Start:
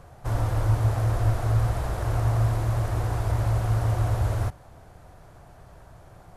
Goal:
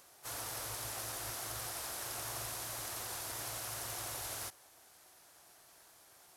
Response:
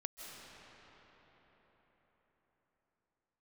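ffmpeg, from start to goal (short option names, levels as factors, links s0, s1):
-filter_complex "[0:a]aderivative,asplit=3[s0][s1][s2];[s1]asetrate=22050,aresample=44100,atempo=2,volume=0.447[s3];[s2]asetrate=52444,aresample=44100,atempo=0.840896,volume=0.316[s4];[s0][s3][s4]amix=inputs=3:normalize=0,volume=1.68"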